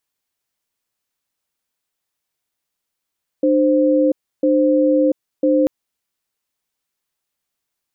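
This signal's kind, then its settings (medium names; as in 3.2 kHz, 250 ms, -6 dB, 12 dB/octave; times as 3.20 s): cadence 300 Hz, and 522 Hz, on 0.69 s, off 0.31 s, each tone -14.5 dBFS 2.24 s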